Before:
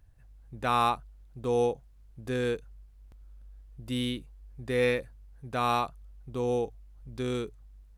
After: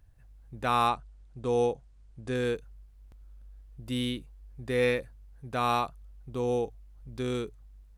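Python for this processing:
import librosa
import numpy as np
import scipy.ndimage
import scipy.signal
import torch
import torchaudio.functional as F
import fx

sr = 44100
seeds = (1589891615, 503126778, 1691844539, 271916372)

y = fx.brickwall_lowpass(x, sr, high_hz=10000.0, at=(0.87, 2.35))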